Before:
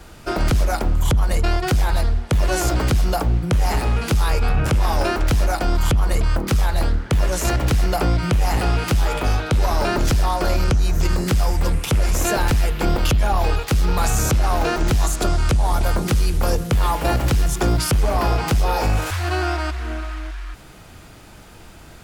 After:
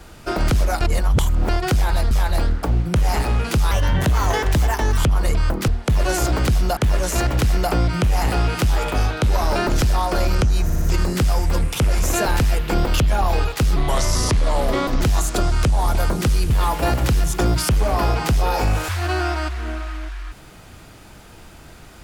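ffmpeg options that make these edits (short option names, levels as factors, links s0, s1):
-filter_complex "[0:a]asplit=15[s0][s1][s2][s3][s4][s5][s6][s7][s8][s9][s10][s11][s12][s13][s14];[s0]atrim=end=0.812[s15];[s1]atrim=start=0.808:end=1.492,asetpts=PTS-STARTPTS,areverse[s16];[s2]atrim=start=1.488:end=2.112[s17];[s3]atrim=start=6.538:end=7.062[s18];[s4]atrim=start=3.198:end=4.284[s19];[s5]atrim=start=4.28:end=5.84,asetpts=PTS-STARTPTS,asetrate=54243,aresample=44100[s20];[s6]atrim=start=5.836:end=6.542[s21];[s7]atrim=start=2.108:end=3.202[s22];[s8]atrim=start=7.058:end=10.992[s23];[s9]atrim=start=10.928:end=10.992[s24];[s10]atrim=start=10.928:end=10.992[s25];[s11]atrim=start=10.928:end=13.874[s26];[s12]atrim=start=13.87:end=14.87,asetpts=PTS-STARTPTS,asetrate=35280,aresample=44100[s27];[s13]atrim=start=14.866:end=16.362[s28];[s14]atrim=start=16.718[s29];[s15][s16]acrossfade=d=0.004:c1=hsin:c2=hsin[s30];[s30][s17]acrossfade=d=0.004:c1=hsin:c2=hsin[s31];[s31][s18]acrossfade=d=0.004:c1=hsin:c2=hsin[s32];[s32][s19]acrossfade=d=0.004:c1=hsin:c2=hsin[s33];[s33][s20]acrossfade=d=0.004:c1=hsin:c2=hsin[s34];[s34][s21]acrossfade=d=0.004:c1=hsin:c2=hsin[s35];[s35][s22]acrossfade=d=0.004:c1=hsin:c2=hsin[s36];[s36][s23]acrossfade=d=0.004:c1=hsin:c2=hsin[s37];[s37][s24]acrossfade=d=0.004:c1=hsin:c2=hsin[s38];[s38][s25]acrossfade=d=0.004:c1=hsin:c2=hsin[s39];[s39][s26]acrossfade=d=0.004:c1=hsin:c2=hsin[s40];[s40][s27]acrossfade=d=0.004:c1=hsin:c2=hsin[s41];[s41][s28]acrossfade=d=0.004:c1=hsin:c2=hsin[s42];[s42][s29]acrossfade=d=0.004:c1=hsin:c2=hsin"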